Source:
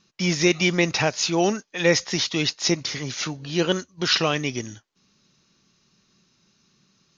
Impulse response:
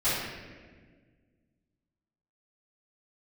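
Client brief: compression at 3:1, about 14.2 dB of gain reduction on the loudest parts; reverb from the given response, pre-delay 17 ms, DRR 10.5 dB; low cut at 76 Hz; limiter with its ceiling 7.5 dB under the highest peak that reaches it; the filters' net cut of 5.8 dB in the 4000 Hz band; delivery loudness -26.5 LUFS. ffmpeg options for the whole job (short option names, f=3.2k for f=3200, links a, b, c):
-filter_complex "[0:a]highpass=76,equalizer=f=4k:t=o:g=-8,acompressor=threshold=-34dB:ratio=3,alimiter=level_in=2dB:limit=-24dB:level=0:latency=1,volume=-2dB,asplit=2[a][b];[1:a]atrim=start_sample=2205,adelay=17[c];[b][c]afir=irnorm=-1:irlink=0,volume=-23dB[d];[a][d]amix=inputs=2:normalize=0,volume=10.5dB"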